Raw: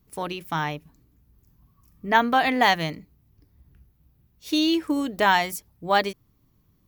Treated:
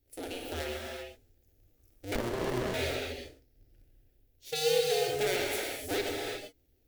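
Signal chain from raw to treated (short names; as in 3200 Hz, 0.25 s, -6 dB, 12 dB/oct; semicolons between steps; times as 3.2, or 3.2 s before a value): cycle switcher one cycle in 2, inverted; limiter -11.5 dBFS, peak gain reduction 7 dB; fixed phaser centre 440 Hz, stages 4; non-linear reverb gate 0.41 s flat, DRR -1.5 dB; 2.15–2.74 running maximum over 33 samples; gain -7.5 dB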